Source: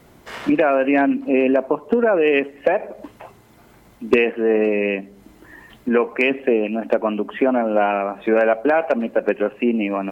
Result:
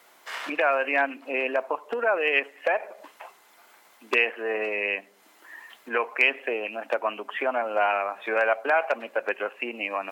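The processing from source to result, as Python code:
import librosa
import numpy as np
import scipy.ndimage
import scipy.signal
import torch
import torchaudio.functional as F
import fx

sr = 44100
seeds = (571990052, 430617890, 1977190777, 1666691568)

y = scipy.signal.sosfilt(scipy.signal.butter(2, 870.0, 'highpass', fs=sr, output='sos'), x)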